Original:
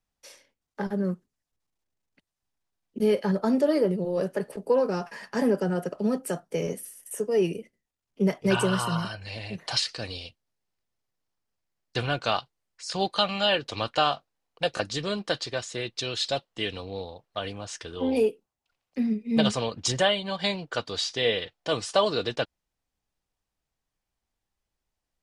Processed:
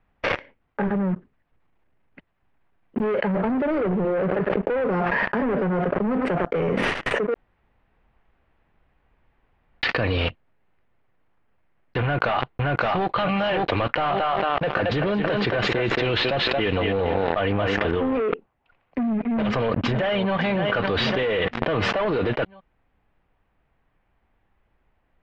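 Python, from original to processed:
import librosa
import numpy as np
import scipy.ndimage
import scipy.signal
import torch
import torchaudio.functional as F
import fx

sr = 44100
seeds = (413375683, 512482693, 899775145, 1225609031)

y = fx.echo_single(x, sr, ms=102, db=-19.0, at=(3.31, 6.62), fade=0.02)
y = fx.echo_throw(y, sr, start_s=12.02, length_s=1.07, ms=570, feedback_pct=15, wet_db=0.0)
y = fx.echo_thinned(y, sr, ms=224, feedback_pct=26, hz=250.0, wet_db=-7, at=(13.86, 17.91))
y = fx.echo_throw(y, sr, start_s=19.27, length_s=1.09, ms=560, feedback_pct=50, wet_db=-16.5)
y = fx.edit(y, sr, fx.room_tone_fill(start_s=7.34, length_s=2.49), tone=tone)
y = fx.leveller(y, sr, passes=5)
y = scipy.signal.sosfilt(scipy.signal.butter(4, 2400.0, 'lowpass', fs=sr, output='sos'), y)
y = fx.env_flatten(y, sr, amount_pct=100)
y = F.gain(torch.from_numpy(y), -12.5).numpy()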